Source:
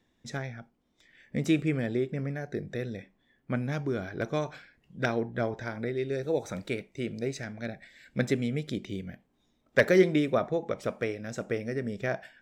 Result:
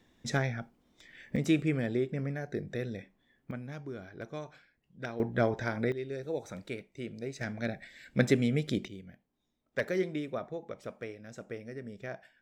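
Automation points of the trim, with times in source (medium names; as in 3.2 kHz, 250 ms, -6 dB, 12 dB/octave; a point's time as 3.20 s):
+5.5 dB
from 1.36 s -1.5 dB
from 3.51 s -10.5 dB
from 5.20 s +2.5 dB
from 5.92 s -6.5 dB
from 7.41 s +2 dB
from 8.88 s -10 dB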